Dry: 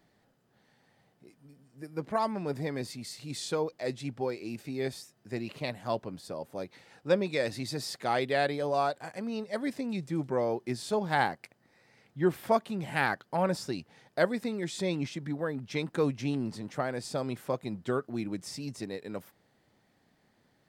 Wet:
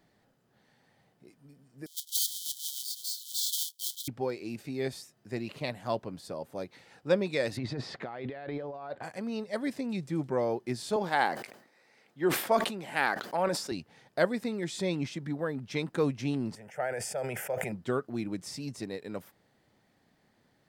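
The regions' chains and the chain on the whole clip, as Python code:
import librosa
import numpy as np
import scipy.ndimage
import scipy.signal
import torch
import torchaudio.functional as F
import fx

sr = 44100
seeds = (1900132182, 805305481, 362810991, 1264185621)

y = fx.chain(x, sr, fx.halfwave_hold(),
    fx.brickwall_highpass(low_hz=3000.0),
    fx.high_shelf(hz=5800.0, db=9.0), at=(1.86, 4.08))
y = fx.chain(y, sr, fx.lowpass(hz=2300.0, slope=12),
    fx.over_compress(threshold_db=-38.0, ratio=-1.0), at=(7.57, 9.03))
y = fx.chain(y, sr, fx.highpass(hz=280.0, slope=12),
    fx.sustainer(db_per_s=90.0), at=(10.96, 13.72))
y = fx.chain(y, sr, fx.bass_treble(bass_db=-10, treble_db=-1),
    fx.fixed_phaser(hz=1100.0, stages=6),
    fx.sustainer(db_per_s=31.0), at=(16.55, 17.72))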